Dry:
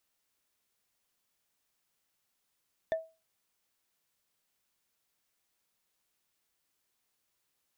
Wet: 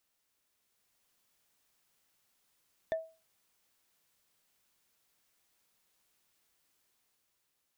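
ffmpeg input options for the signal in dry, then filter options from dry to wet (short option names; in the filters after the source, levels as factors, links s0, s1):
-f lavfi -i "aevalsrc='0.0631*pow(10,-3*t/0.29)*sin(2*PI*647*t)+0.02*pow(10,-3*t/0.086)*sin(2*PI*1783.8*t)+0.00631*pow(10,-3*t/0.038)*sin(2*PI*3496.4*t)+0.002*pow(10,-3*t/0.021)*sin(2*PI*5779.7*t)+0.000631*pow(10,-3*t/0.013)*sin(2*PI*8631*t)':d=0.45:s=44100"
-af "alimiter=level_in=1.78:limit=0.0631:level=0:latency=1:release=221,volume=0.562,dynaudnorm=f=120:g=13:m=1.68"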